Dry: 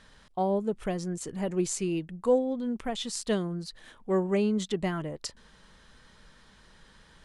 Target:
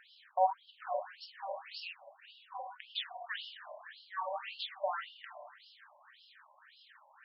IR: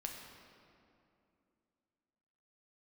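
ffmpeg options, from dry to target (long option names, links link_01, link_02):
-filter_complex "[0:a]bandreject=frequency=56.8:width_type=h:width=4,bandreject=frequency=113.6:width_type=h:width=4,bandreject=frequency=170.4:width_type=h:width=4,bandreject=frequency=227.2:width_type=h:width=4,bandreject=frequency=284:width_type=h:width=4,bandreject=frequency=340.8:width_type=h:width=4,bandreject=frequency=397.6:width_type=h:width=4,bandreject=frequency=454.4:width_type=h:width=4,bandreject=frequency=511.2:width_type=h:width=4[link_01];[1:a]atrim=start_sample=2205,asetrate=66150,aresample=44100[link_02];[link_01][link_02]afir=irnorm=-1:irlink=0,afftfilt=real='re*between(b*sr/1024,740*pow(3900/740,0.5+0.5*sin(2*PI*1.8*pts/sr))/1.41,740*pow(3900/740,0.5+0.5*sin(2*PI*1.8*pts/sr))*1.41)':imag='im*between(b*sr/1024,740*pow(3900/740,0.5+0.5*sin(2*PI*1.8*pts/sr))/1.41,740*pow(3900/740,0.5+0.5*sin(2*PI*1.8*pts/sr))*1.41)':win_size=1024:overlap=0.75,volume=9dB"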